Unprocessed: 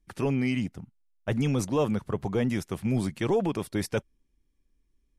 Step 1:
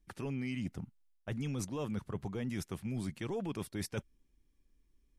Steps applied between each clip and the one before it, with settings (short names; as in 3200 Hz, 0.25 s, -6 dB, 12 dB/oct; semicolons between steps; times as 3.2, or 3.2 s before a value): dynamic EQ 620 Hz, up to -5 dB, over -38 dBFS, Q 0.83; reverse; compressor 6:1, threshold -35 dBFS, peak gain reduction 11 dB; reverse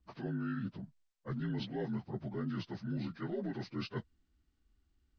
inharmonic rescaling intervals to 79%; high shelf 4900 Hz -6 dB; gain +1 dB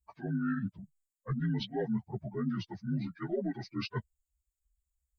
per-bin expansion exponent 2; gain +8 dB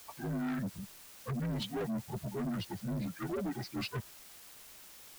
in parallel at -5.5 dB: requantised 8-bit, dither triangular; on the sum: soft clip -32.5 dBFS, distortion -9 dB